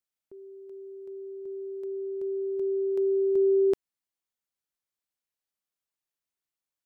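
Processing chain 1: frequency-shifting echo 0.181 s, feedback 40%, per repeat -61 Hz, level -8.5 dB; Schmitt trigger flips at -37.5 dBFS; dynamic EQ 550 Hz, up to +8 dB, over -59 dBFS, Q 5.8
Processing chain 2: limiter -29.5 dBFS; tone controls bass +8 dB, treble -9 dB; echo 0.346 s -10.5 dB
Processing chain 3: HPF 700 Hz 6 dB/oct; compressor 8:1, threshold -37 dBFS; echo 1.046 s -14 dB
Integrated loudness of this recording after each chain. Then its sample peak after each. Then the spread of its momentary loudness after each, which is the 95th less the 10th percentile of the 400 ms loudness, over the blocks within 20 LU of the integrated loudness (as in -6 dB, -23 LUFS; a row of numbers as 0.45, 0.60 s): -31.5, -36.5, -40.5 LUFS; -24.5, -29.5, -29.5 dBFS; 5, 12, 16 LU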